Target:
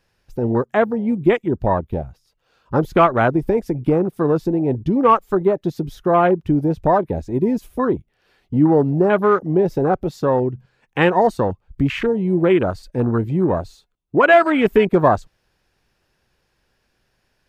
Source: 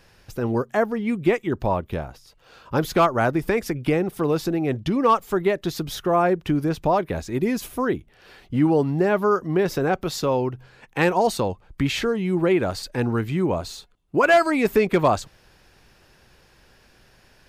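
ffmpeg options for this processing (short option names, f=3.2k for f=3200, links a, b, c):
-af "afwtdn=0.0447,volume=4.5dB"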